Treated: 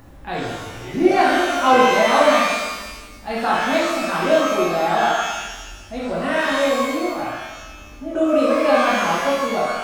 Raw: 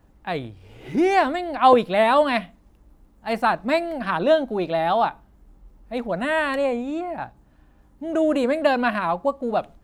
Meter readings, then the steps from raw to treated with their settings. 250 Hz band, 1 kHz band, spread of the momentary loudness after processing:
+3.0 dB, +3.5 dB, 17 LU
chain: in parallel at -1 dB: upward compressor, threshold -23 dBFS; on the sum: shimmer reverb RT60 1.2 s, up +12 st, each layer -8 dB, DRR -7.5 dB; gain -11.5 dB

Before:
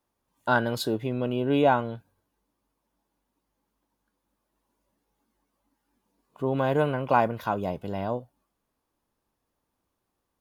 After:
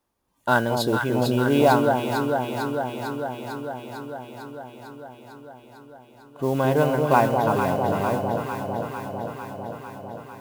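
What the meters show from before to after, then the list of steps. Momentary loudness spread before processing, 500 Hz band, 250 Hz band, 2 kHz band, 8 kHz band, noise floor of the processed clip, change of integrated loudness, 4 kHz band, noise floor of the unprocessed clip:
10 LU, +6.0 dB, +6.0 dB, +5.5 dB, n/a, -51 dBFS, +3.0 dB, +5.5 dB, -81 dBFS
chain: modulation noise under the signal 24 dB; echo with dull and thin repeats by turns 0.225 s, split 890 Hz, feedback 85%, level -3.5 dB; gain +3 dB

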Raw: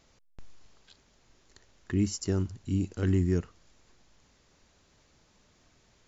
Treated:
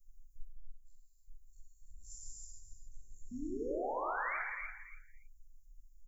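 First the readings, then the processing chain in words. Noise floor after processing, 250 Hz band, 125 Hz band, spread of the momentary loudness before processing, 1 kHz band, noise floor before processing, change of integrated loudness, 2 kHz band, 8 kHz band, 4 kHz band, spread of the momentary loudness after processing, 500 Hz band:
-62 dBFS, -15.0 dB, -30.5 dB, 5 LU, +13.5 dB, -65 dBFS, -10.5 dB, +7.0 dB, n/a, -21.5 dB, 23 LU, -5.0 dB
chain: spectral dilation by 60 ms; inverse Chebyshev band-stop 110–3500 Hz, stop band 70 dB; reverb removal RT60 1.6 s; high shelf 5900 Hz -9.5 dB; compressor, threshold -59 dBFS, peak gain reduction 20.5 dB; painted sound rise, 3.31–4.37, 230–2400 Hz -59 dBFS; on a send: feedback echo 0.284 s, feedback 16%, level -10.5 dB; on the sum: non-linear reverb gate 0.36 s flat, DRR -4 dB; gain +16 dB

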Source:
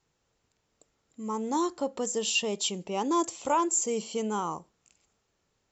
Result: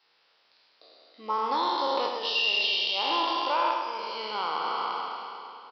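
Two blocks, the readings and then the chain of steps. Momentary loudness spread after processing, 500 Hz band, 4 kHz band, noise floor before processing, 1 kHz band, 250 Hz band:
11 LU, -2.0 dB, +8.5 dB, -77 dBFS, +5.0 dB, -10.0 dB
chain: spectral trails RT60 2.59 s; HPF 640 Hz 12 dB/oct; high shelf 3500 Hz +11.5 dB; compressor 5:1, threshold -29 dBFS, peak gain reduction 16.5 dB; on a send: feedback echo 0.103 s, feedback 52%, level -7 dB; on the sum: downsampling 11025 Hz; gain +6 dB

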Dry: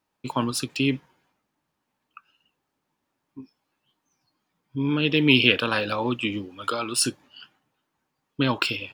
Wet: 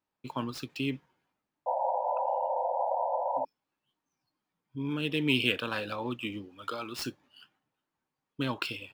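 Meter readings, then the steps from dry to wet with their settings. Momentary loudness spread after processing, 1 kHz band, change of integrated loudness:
12 LU, +2.0 dB, -9.0 dB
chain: median filter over 5 samples; painted sound noise, 1.66–3.45, 500–1000 Hz -21 dBFS; gain -9 dB

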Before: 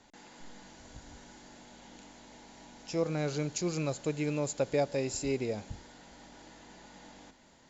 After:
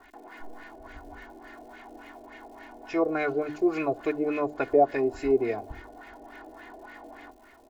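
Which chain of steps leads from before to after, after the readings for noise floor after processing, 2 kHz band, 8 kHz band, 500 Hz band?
-54 dBFS, +7.5 dB, n/a, +7.5 dB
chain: LFO low-pass sine 3.5 Hz 560–2100 Hz; bell 110 Hz -7 dB 1.5 oct; crackle 180/s -59 dBFS; high shelf 4200 Hz +5 dB; notches 50/100/150/200/250/300 Hz; comb 2.8 ms, depth 88%; gain +3.5 dB

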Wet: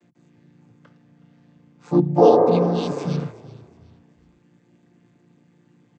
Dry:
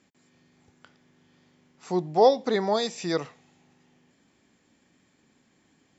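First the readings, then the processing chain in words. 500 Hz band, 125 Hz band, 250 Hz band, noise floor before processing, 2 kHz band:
+6.0 dB, +14.0 dB, +10.0 dB, -67 dBFS, -5.0 dB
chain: chord vocoder major triad, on A#2; spectral repair 2.27–3.2, 250–2100 Hz both; frequency-shifting echo 0.369 s, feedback 34%, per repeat -31 Hz, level -19 dB; gain +7 dB

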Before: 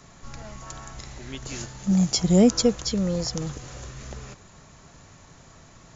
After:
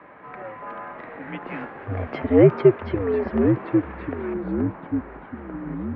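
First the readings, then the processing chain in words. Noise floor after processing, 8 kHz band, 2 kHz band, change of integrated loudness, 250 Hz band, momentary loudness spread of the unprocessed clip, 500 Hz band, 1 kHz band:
-42 dBFS, n/a, +7.5 dB, +0.5 dB, +1.5 dB, 22 LU, +7.5 dB, +6.5 dB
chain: mistuned SSB -94 Hz 320–2300 Hz; echoes that change speed 0.588 s, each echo -3 st, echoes 3, each echo -6 dB; gain +8.5 dB

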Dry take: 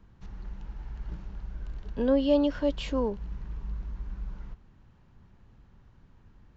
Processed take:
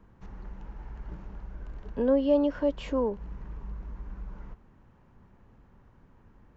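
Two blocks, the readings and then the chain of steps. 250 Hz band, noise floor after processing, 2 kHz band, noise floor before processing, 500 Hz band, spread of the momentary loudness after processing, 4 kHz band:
-0.5 dB, -59 dBFS, -2.0 dB, -59 dBFS, +1.0 dB, 21 LU, -7.0 dB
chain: in parallel at -0.5 dB: compressor, threshold -34 dBFS, peak gain reduction 15 dB; on the sum: ten-band EQ 250 Hz +4 dB, 500 Hz +6 dB, 1000 Hz +5 dB, 2000 Hz +3 dB, 4000 Hz -5 dB; gain -8 dB

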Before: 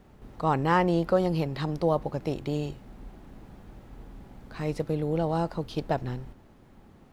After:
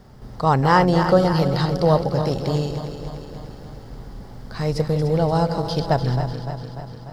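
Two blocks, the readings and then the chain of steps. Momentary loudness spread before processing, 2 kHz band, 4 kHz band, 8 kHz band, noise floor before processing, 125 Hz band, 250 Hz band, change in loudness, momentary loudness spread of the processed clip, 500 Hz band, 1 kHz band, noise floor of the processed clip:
14 LU, +8.0 dB, +11.5 dB, n/a, -55 dBFS, +10.5 dB, +7.0 dB, +8.0 dB, 22 LU, +8.0 dB, +8.5 dB, -39 dBFS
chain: regenerating reverse delay 0.148 s, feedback 77%, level -9 dB; thirty-one-band EQ 125 Hz +6 dB, 315 Hz -7 dB, 2500 Hz -8 dB, 5000 Hz +11 dB; gain +7.5 dB

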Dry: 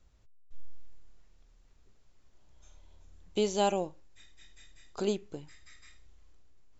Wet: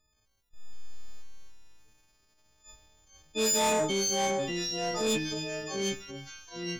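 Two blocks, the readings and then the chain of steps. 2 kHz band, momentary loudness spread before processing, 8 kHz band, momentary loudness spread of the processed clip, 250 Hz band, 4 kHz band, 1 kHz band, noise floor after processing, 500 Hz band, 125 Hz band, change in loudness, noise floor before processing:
+13.0 dB, 19 LU, n/a, 14 LU, +4.0 dB, +11.5 dB, +4.0 dB, -73 dBFS, +3.0 dB, +5.5 dB, +3.5 dB, -61 dBFS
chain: frequency quantiser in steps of 6 st; AGC gain up to 3.5 dB; gate -49 dBFS, range -12 dB; echoes that change speed 0.127 s, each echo -2 st, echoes 3, each echo -6 dB; transient shaper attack -9 dB, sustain +4 dB; on a send: thin delay 0.296 s, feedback 69%, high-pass 2500 Hz, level -20.5 dB; on the sum: soft clip -26 dBFS, distortion -9 dB; gain +3 dB

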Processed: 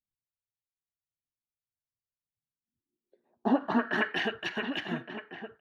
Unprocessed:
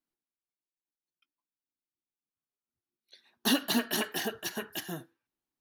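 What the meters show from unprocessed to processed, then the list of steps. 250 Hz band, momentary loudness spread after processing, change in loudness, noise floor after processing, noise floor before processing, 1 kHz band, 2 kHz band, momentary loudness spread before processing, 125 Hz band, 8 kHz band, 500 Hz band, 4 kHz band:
+2.5 dB, 14 LU, +0.5 dB, under -85 dBFS, under -85 dBFS, +5.5 dB, +5.0 dB, 12 LU, +2.0 dB, under -20 dB, +3.5 dB, -5.0 dB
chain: outdoor echo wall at 200 m, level -9 dB; low-pass sweep 110 Hz -> 2400 Hz, 2.3–4.19; gain +1.5 dB

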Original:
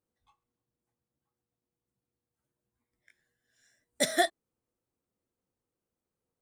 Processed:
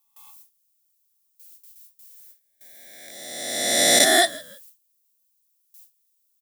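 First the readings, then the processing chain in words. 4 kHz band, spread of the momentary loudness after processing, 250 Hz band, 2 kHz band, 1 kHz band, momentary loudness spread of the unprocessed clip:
+17.0 dB, 17 LU, +9.5 dB, +12.5 dB, +9.0 dB, 4 LU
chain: spectral swells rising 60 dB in 1.68 s; added noise violet -62 dBFS; on a send: frequency-shifting echo 0.162 s, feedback 31%, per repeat -70 Hz, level -23 dB; on the sum: gate with hold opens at -50 dBFS; HPF 110 Hz 6 dB/oct; in parallel at +1 dB: limiter -18.5 dBFS, peak gain reduction 9 dB; on the sum: high shelf 2500 Hz +8.5 dB; gain -1 dB

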